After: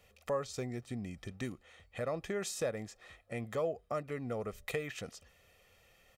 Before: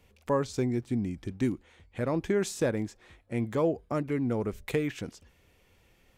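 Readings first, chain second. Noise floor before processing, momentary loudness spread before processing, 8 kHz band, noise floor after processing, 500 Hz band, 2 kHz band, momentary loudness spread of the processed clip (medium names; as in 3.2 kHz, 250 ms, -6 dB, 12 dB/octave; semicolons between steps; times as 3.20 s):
-65 dBFS, 9 LU, -2.5 dB, -67 dBFS, -6.5 dB, -4.0 dB, 12 LU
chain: bass shelf 230 Hz -10.5 dB; comb 1.6 ms, depth 58%; compression 1.5:1, threshold -42 dBFS, peak gain reduction 7.5 dB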